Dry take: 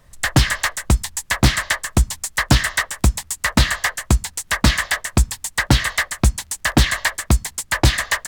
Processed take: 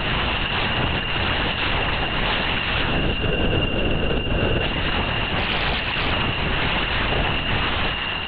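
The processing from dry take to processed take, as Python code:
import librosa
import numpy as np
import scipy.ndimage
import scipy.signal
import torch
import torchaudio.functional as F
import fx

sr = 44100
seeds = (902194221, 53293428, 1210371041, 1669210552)

y = fx.spec_swells(x, sr, rise_s=2.23)
y = fx.high_shelf(y, sr, hz=2100.0, db=-9.0)
y = (np.mod(10.0 ** (12.5 / 20.0) * y + 1.0, 2.0) - 1.0) / 10.0 ** (12.5 / 20.0)
y = fx.level_steps(y, sr, step_db=9)
y = fx.chorus_voices(y, sr, voices=6, hz=0.6, base_ms=29, depth_ms=4.5, mix_pct=50)
y = fx.sample_hold(y, sr, seeds[0], rate_hz=1000.0, jitter_pct=0, at=(2.95, 4.63))
y = y + 10.0 ** (-7.5 / 20.0) * np.pad(y, (int(343 * sr / 1000.0), 0))[:len(y)]
y = y + 10.0 ** (-26.0 / 20.0) * np.sin(2.0 * np.pi * 2800.0 * np.arange(len(y)) / sr)
y = fx.lpc_vocoder(y, sr, seeds[1], excitation='whisper', order=8)
y = fx.doppler_dist(y, sr, depth_ms=0.32, at=(5.38, 6.13))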